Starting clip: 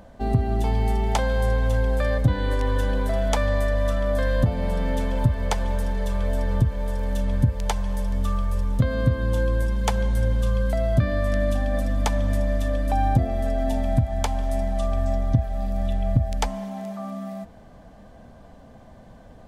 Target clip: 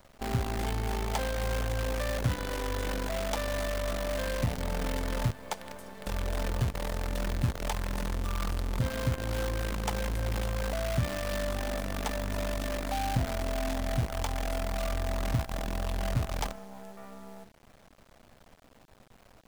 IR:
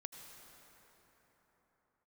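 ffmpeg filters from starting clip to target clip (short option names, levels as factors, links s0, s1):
-filter_complex "[0:a]asettb=1/sr,asplit=3[s0][s1][s2];[s0]atrim=end=5.304[s3];[s1]atrim=start=5.3:end=6.07,asetpts=PTS-STARTPTS,afade=t=in:d=0.004:c=qsin,afade=t=out:st=0.766:d=0.004:c=qsin,highpass=160[s4];[s2]atrim=start=6.066[s5];[s3][s4]acrossfade=d=0.004:c1=hsin:c2=qsin[s6];[s6][s5]acrossfade=d=0.004:c1=qsin:c2=hsin,bandreject=f=50:t=h:w=6,bandreject=f=100:t=h:w=6,bandreject=f=150:t=h:w=6,bandreject=f=200:t=h:w=6,bandreject=f=250:t=h:w=6,bandreject=f=300:t=h:w=6,bandreject=f=350:t=h:w=6,bandreject=f=400:t=h:w=6,bandreject=f=450:t=h:w=6,acrossover=split=4200[s7][s8];[s7]acrusher=bits=5:dc=4:mix=0:aa=0.000001[s9];[s9][s8]amix=inputs=2:normalize=0,volume=0.376"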